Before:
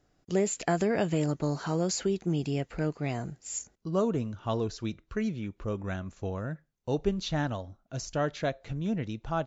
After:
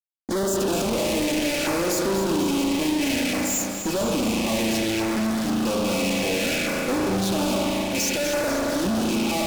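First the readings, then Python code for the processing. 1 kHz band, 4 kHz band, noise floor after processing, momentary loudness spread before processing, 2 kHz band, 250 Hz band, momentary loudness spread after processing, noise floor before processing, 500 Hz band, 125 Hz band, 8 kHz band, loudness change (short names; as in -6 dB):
+8.0 dB, +15.0 dB, -28 dBFS, 9 LU, +12.5 dB, +9.0 dB, 1 LU, -71 dBFS, +6.5 dB, -0.5 dB, n/a, +8.5 dB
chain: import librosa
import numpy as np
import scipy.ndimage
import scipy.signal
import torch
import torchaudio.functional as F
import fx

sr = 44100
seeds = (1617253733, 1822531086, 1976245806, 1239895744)

y = fx.rattle_buzz(x, sr, strikes_db=-36.0, level_db=-26.0)
y = scipy.signal.sosfilt(scipy.signal.butter(4, 200.0, 'highpass', fs=sr, output='sos'), y)
y = y + 0.87 * np.pad(y, (int(3.5 * sr / 1000.0), 0))[:len(y)]
y = fx.rotary(y, sr, hz=0.6)
y = fx.rev_spring(y, sr, rt60_s=1.3, pass_ms=(36,), chirp_ms=45, drr_db=0.5)
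y = fx.fuzz(y, sr, gain_db=51.0, gate_db=-58.0)
y = fx.filter_lfo_notch(y, sr, shape='saw_down', hz=0.6, low_hz=980.0, high_hz=3400.0, q=0.87)
y = fx.echo_feedback(y, sr, ms=247, feedback_pct=57, wet_db=-9.0)
y = y * 10.0 ** (-9.0 / 20.0)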